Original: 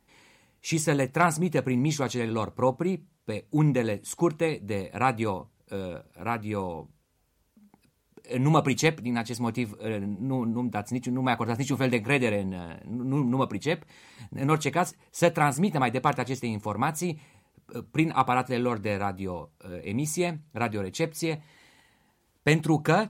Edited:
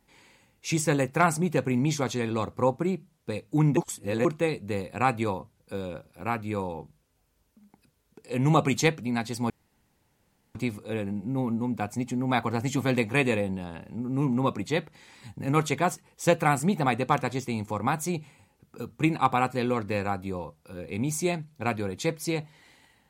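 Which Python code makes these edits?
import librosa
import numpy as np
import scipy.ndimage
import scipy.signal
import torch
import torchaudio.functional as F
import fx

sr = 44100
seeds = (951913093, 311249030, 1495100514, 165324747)

y = fx.edit(x, sr, fx.reverse_span(start_s=3.77, length_s=0.48),
    fx.insert_room_tone(at_s=9.5, length_s=1.05), tone=tone)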